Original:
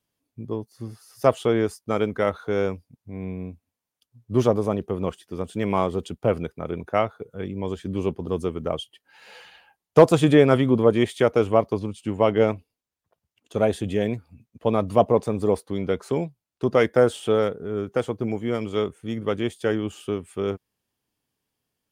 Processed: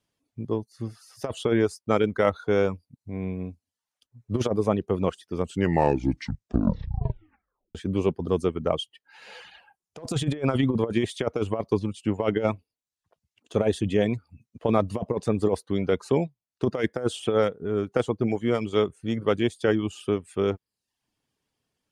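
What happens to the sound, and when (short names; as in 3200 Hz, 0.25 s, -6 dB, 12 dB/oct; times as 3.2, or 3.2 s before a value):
5.35 tape stop 2.40 s
whole clip: reverb removal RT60 0.5 s; LPF 9000 Hz 12 dB/oct; negative-ratio compressor -21 dBFS, ratio -0.5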